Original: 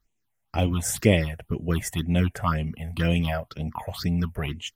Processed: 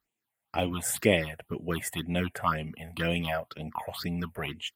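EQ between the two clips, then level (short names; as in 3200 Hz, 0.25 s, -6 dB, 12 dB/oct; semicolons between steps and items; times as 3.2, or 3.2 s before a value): HPF 380 Hz 6 dB/oct; bell 5900 Hz -11 dB 0.46 oct; 0.0 dB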